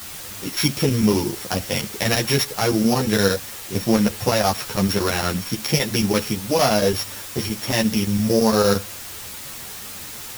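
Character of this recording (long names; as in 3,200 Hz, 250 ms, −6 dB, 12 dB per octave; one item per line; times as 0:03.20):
a buzz of ramps at a fixed pitch in blocks of 8 samples
chopped level 8.8 Hz, depth 65%, duty 85%
a quantiser's noise floor 6 bits, dither triangular
a shimmering, thickened sound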